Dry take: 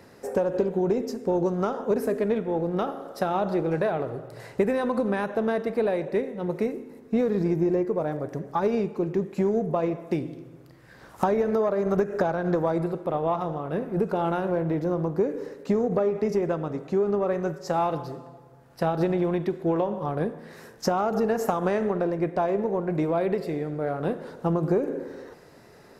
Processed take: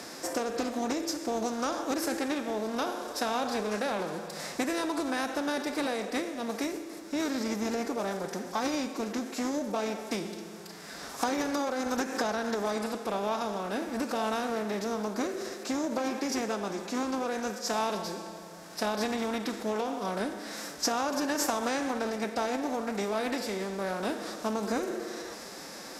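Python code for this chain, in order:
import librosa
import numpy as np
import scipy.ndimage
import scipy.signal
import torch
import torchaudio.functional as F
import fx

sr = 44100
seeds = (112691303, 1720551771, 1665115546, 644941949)

y = fx.bin_compress(x, sr, power=0.6)
y = fx.highpass(y, sr, hz=74.0, slope=6)
y = fx.pitch_keep_formants(y, sr, semitones=4.5)
y = fx.graphic_eq_10(y, sr, hz=(125, 250, 500, 1000, 2000, 4000, 8000), db=(-10, -7, -9, -5, -3, 5, 6))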